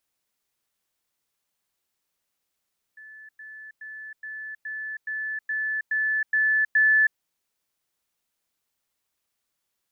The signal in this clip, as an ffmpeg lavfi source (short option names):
-f lavfi -i "aevalsrc='pow(10,(-42.5+3*floor(t/0.42))/20)*sin(2*PI*1740*t)*clip(min(mod(t,0.42),0.32-mod(t,0.42))/0.005,0,1)':d=4.2:s=44100"